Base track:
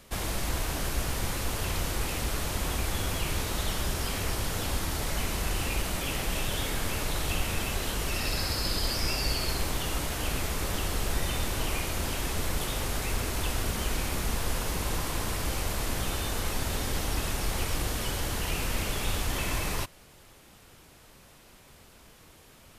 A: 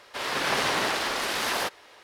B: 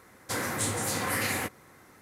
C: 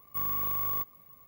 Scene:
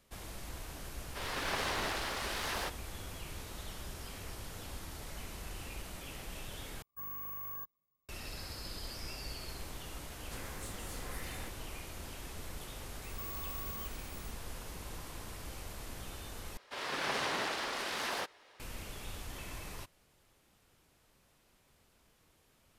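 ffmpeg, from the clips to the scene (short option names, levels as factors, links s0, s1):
-filter_complex "[1:a]asplit=2[s0][s1];[3:a]asplit=2[s2][s3];[0:a]volume=0.188[s4];[s2]afwtdn=0.00708[s5];[2:a]asoftclip=type=tanh:threshold=0.0708[s6];[s3]acompressor=threshold=0.00891:ratio=6:attack=3.2:release=140:knee=1:detection=peak[s7];[s1]highshelf=f=9800:g=-4.5[s8];[s4]asplit=3[s9][s10][s11];[s9]atrim=end=6.824[s12];[s5]atrim=end=1.27,asetpts=PTS-STARTPTS,volume=0.251[s13];[s10]atrim=start=8.086:end=16.574[s14];[s8]atrim=end=2.03,asetpts=PTS-STARTPTS,volume=0.355[s15];[s11]atrim=start=18.596[s16];[s0]atrim=end=2.03,asetpts=PTS-STARTPTS,volume=0.316,afade=t=in:d=0.004:c=hsin,afade=t=out:st=2.026:d=0.004:c=hsin,adelay=1010[s17];[s6]atrim=end=2.01,asetpts=PTS-STARTPTS,volume=0.15,afade=t=in:d=0.004:c=hsin,afade=t=out:st=2.006:d=0.004:c=hsin,adelay=441882S[s18];[s7]atrim=end=1.27,asetpts=PTS-STARTPTS,volume=0.841,afade=t=in:d=0.004:c=hsin,afade=t=out:st=1.266:d=0.004:c=hsin,adelay=13040[s19];[s12][s13]acrossfade=d=0.004:c1=hsin:c2=hsin[s20];[s20][s14]acrossfade=d=0.004:c1=hsin:c2=hsin[s21];[s21][s15]acrossfade=d=0.004:c1=hsin:c2=hsin[s22];[s22][s16]acrossfade=d=0.004:c1=hsin:c2=hsin[s23];[s23][s17][s18][s19]amix=inputs=4:normalize=0"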